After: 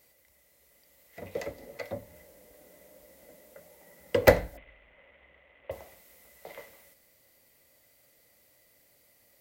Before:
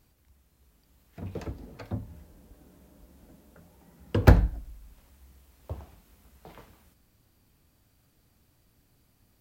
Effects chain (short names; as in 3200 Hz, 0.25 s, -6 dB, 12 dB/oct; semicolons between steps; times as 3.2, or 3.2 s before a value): 4.57–5.71 CVSD 16 kbps; tilt +3 dB/oct; small resonant body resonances 550/2000 Hz, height 17 dB, ringing for 25 ms; gain -2.5 dB